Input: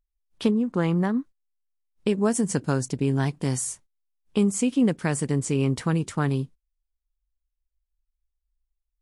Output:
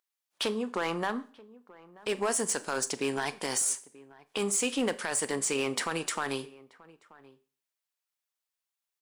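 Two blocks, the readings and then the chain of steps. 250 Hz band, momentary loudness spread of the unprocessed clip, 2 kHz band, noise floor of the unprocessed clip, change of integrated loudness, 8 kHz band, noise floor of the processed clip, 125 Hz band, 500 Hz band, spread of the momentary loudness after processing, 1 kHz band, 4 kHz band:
−12.0 dB, 7 LU, +1.5 dB, −82 dBFS, −5.5 dB, +2.5 dB, below −85 dBFS, −20.5 dB, −4.0 dB, 8 LU, −0.5 dB, +4.5 dB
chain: high-pass filter 680 Hz 12 dB per octave
brickwall limiter −24.5 dBFS, peak gain reduction 11.5 dB
gain into a clipping stage and back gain 29.5 dB
slap from a distant wall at 160 metres, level −21 dB
four-comb reverb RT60 0.43 s, combs from 29 ms, DRR 15 dB
level +7 dB

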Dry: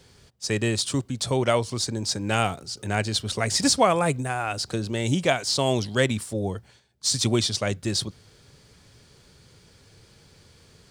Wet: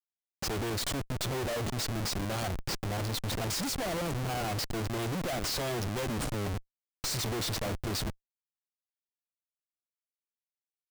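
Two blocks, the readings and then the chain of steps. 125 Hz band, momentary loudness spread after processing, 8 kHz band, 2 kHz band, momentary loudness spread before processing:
−6.5 dB, 4 LU, −9.0 dB, −9.0 dB, 8 LU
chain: harmonic generator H 2 −11 dB, 3 −30 dB, 4 −43 dB, 6 −21 dB, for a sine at −6 dBFS
flat-topped bell 1,500 Hz −9.5 dB
comparator with hysteresis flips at −33.5 dBFS
level −3.5 dB

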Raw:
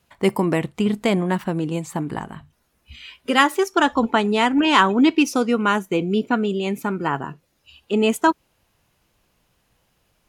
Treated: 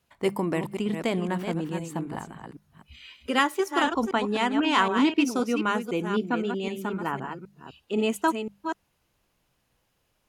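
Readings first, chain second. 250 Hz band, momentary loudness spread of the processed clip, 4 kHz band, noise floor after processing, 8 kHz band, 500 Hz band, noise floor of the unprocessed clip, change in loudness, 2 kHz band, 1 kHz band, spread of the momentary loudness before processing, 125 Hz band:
−6.5 dB, 14 LU, −6.0 dB, −73 dBFS, −6.0 dB, −6.0 dB, −67 dBFS, −6.5 dB, −6.5 dB, −6.5 dB, 12 LU, −7.0 dB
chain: delay that plays each chunk backwards 257 ms, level −7 dB
mains-hum notches 50/100/150/200 Hz
level −7 dB

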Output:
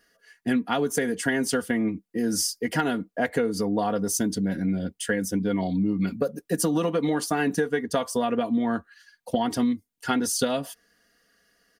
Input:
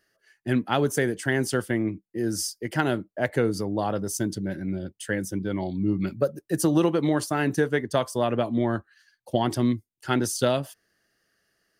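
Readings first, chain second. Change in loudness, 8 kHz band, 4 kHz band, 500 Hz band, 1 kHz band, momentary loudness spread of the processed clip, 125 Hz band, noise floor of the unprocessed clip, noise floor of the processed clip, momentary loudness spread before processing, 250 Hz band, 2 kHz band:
0.0 dB, +3.5 dB, +1.5 dB, −1.0 dB, +0.5 dB, 4 LU, −4.0 dB, −78 dBFS, −72 dBFS, 7 LU, +1.0 dB, 0.0 dB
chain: comb filter 4.2 ms, depth 76%
downward compressor, threshold −25 dBFS, peak gain reduction 10.5 dB
level +4 dB

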